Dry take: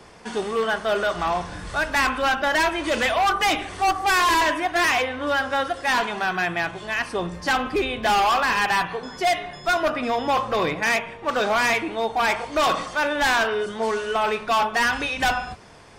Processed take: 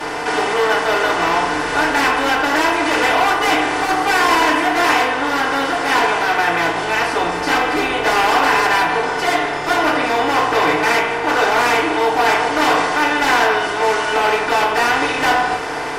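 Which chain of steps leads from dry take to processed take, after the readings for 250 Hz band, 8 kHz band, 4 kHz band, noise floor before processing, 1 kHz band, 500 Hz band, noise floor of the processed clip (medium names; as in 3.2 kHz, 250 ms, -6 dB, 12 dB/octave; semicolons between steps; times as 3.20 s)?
+7.5 dB, +5.5 dB, +6.0 dB, -41 dBFS, +7.0 dB, +6.0 dB, -22 dBFS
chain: spectral levelling over time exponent 0.4; FDN reverb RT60 0.31 s, low-frequency decay 0.7×, high-frequency decay 0.7×, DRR -9.5 dB; trim -11 dB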